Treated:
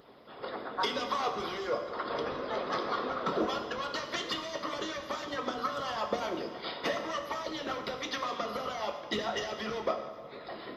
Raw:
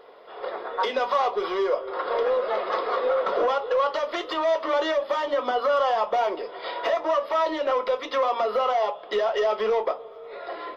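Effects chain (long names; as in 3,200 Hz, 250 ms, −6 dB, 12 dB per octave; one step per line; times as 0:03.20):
high-pass filter 92 Hz 12 dB per octave
low shelf with overshoot 320 Hz +13 dB, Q 1.5
harmonic and percussive parts rebalanced harmonic −16 dB
bass and treble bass +5 dB, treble +9 dB
dense smooth reverb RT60 1.5 s, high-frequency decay 0.85×, DRR 5 dB
level −2 dB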